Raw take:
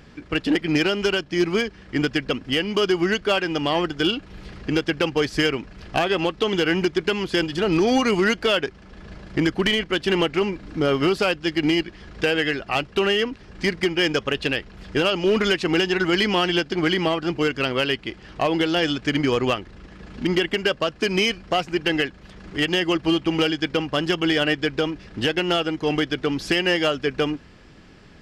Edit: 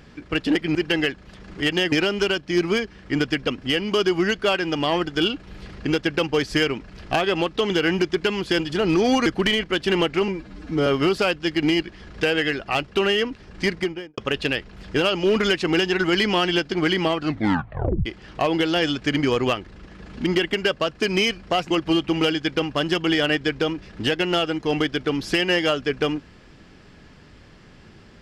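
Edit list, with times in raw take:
8.09–9.46 cut
10.48–10.87 stretch 1.5×
13.7–14.18 studio fade out
17.2 tape stop 0.86 s
21.71–22.88 move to 0.75

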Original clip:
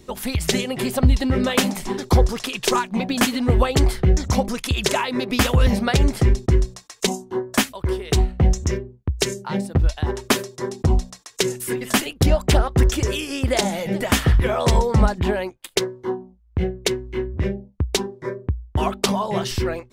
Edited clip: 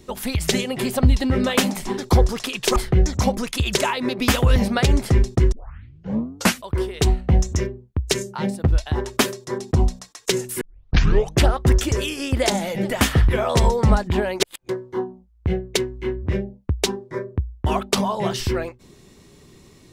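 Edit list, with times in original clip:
2.76–3.87 cut
6.63 tape start 1.11 s
11.72 tape start 0.86 s
15.51–15.8 reverse

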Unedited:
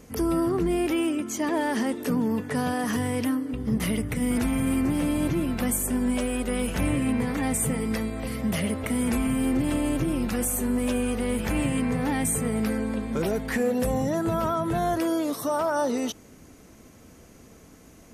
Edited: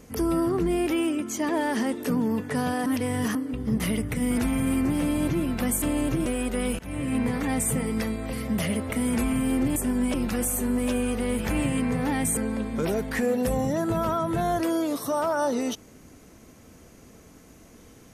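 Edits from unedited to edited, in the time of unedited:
2.86–3.35 reverse
5.82–6.2 swap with 9.7–10.14
6.73–7.13 fade in, from -23 dB
12.37–12.74 cut

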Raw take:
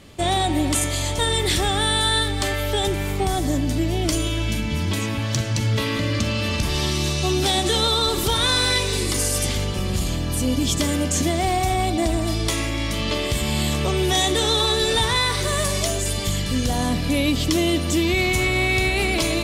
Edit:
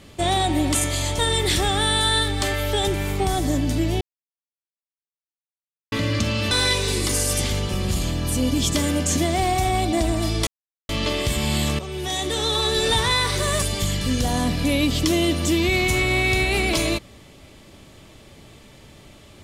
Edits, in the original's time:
4.01–5.92 mute
6.51–8.56 cut
12.52–12.94 mute
13.84–14.95 fade in, from -12.5 dB
15.67–16.07 cut

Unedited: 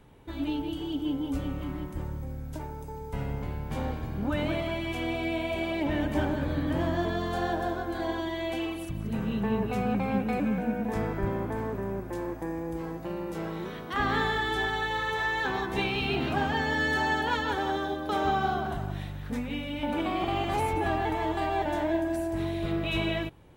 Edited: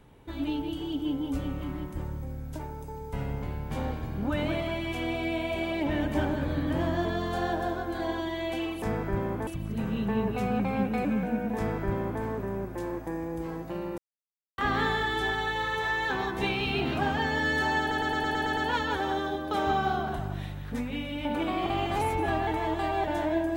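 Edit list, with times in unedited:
10.92–11.57 copy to 8.82
13.33–13.93 mute
17.15 stutter 0.11 s, 8 plays

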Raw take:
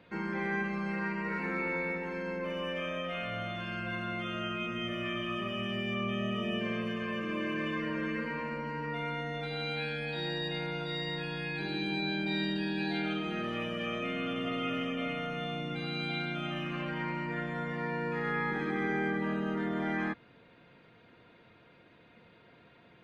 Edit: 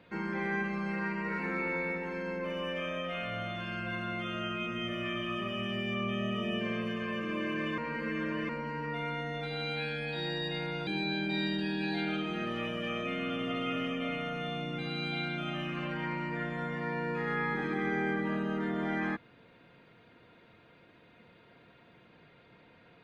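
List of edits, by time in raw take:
7.78–8.49 reverse
10.87–11.84 cut

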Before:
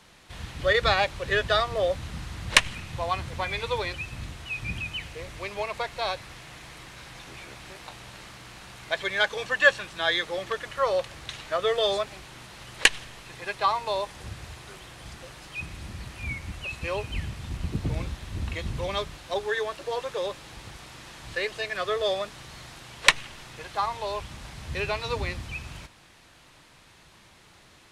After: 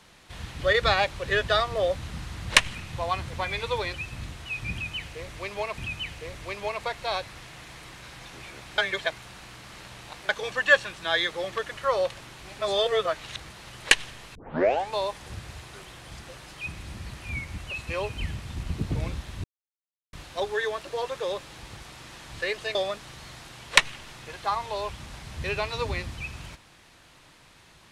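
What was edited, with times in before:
4.72–5.78 loop, 2 plays
7.72–9.23 reverse
11.15–12.44 reverse
13.29 tape start 0.58 s
18.38–19.07 mute
21.69–22.06 cut

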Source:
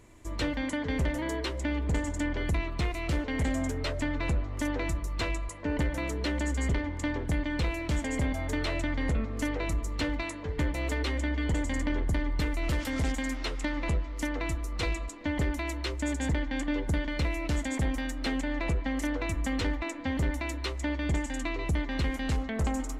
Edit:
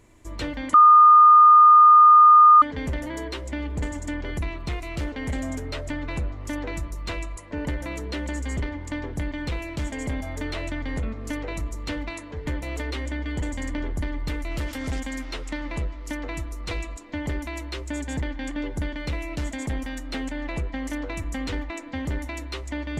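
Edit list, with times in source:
0.74 add tone 1220 Hz -8.5 dBFS 1.88 s

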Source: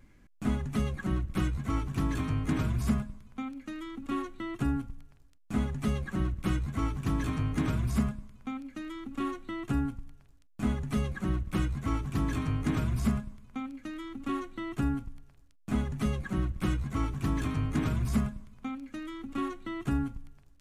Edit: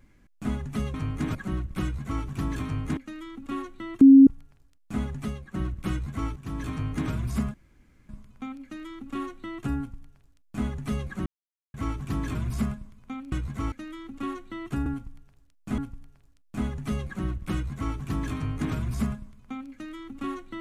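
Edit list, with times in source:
2.56–3.57 cut
4.61–4.87 bleep 271 Hz -8 dBFS
5.8–6.14 fade out quadratic, to -10 dB
6.96–7.49 fade in equal-power, from -12 dB
8.14 insert room tone 0.55 s
9.78–10.7 copy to 14.92
11.31–11.79 mute
12.4–12.81 move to 0.94
16.68–17.08 copy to 13.78

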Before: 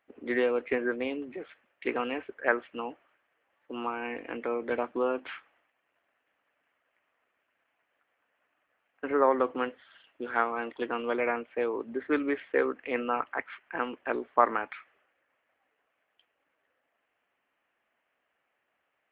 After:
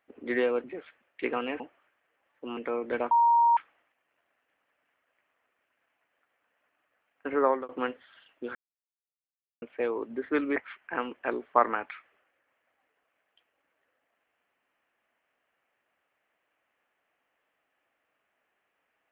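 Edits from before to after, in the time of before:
0.64–1.27 cut
2.23–2.87 cut
3.84–4.35 cut
4.89–5.35 bleep 937 Hz -18 dBFS
9.16–9.47 fade out equal-power
10.33–11.4 mute
12.34–13.38 cut

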